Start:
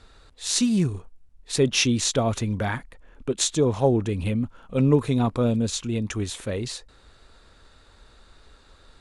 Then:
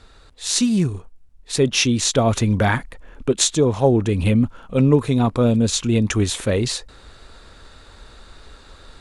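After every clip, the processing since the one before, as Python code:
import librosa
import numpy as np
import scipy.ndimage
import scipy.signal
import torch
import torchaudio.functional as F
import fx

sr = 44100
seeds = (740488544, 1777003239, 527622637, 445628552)

y = fx.rider(x, sr, range_db=3, speed_s=0.5)
y = F.gain(torch.from_numpy(y), 6.0).numpy()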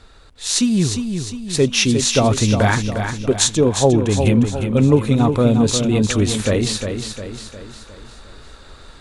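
y = fx.echo_feedback(x, sr, ms=355, feedback_pct=49, wet_db=-7)
y = F.gain(torch.from_numpy(y), 1.5).numpy()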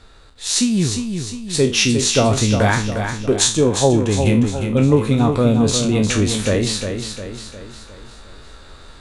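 y = fx.spec_trails(x, sr, decay_s=0.33)
y = F.gain(torch.from_numpy(y), -1.0).numpy()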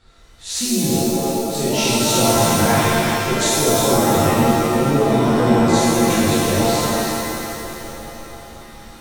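y = fx.echo_stepped(x, sr, ms=327, hz=3100.0, octaves=-0.7, feedback_pct=70, wet_db=-8.5)
y = fx.rev_shimmer(y, sr, seeds[0], rt60_s=1.7, semitones=7, shimmer_db=-2, drr_db=-7.0)
y = F.gain(torch.from_numpy(y), -10.5).numpy()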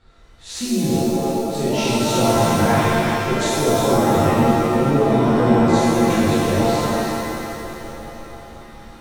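y = fx.high_shelf(x, sr, hz=3700.0, db=-10.0)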